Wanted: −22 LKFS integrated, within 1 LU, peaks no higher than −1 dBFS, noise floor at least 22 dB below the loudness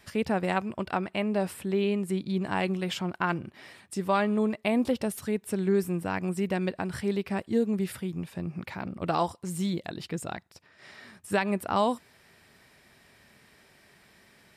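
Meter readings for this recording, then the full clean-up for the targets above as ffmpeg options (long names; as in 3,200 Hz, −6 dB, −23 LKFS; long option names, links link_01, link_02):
integrated loudness −29.5 LKFS; sample peak −13.0 dBFS; target loudness −22.0 LKFS
→ -af "volume=7.5dB"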